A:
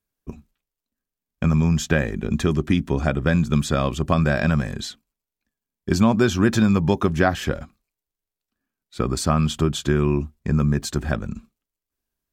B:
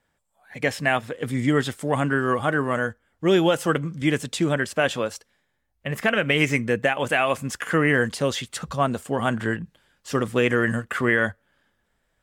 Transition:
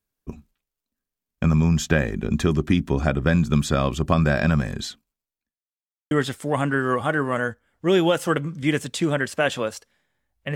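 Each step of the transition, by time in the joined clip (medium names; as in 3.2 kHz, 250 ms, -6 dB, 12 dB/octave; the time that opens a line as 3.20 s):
A
4.81–5.61 s: fade out equal-power
5.61–6.11 s: mute
6.11 s: go over to B from 1.50 s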